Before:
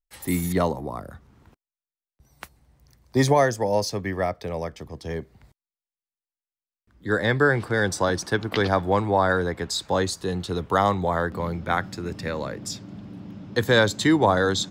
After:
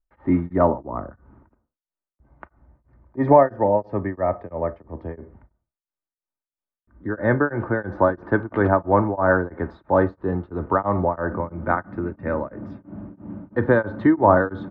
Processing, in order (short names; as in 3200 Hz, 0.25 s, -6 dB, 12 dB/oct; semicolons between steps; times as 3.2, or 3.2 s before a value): LPF 1500 Hz 24 dB/oct; comb 3.3 ms, depth 41%; on a send at -15 dB: reverb, pre-delay 27 ms; on the sum: beating tremolo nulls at 3 Hz; gain +5.5 dB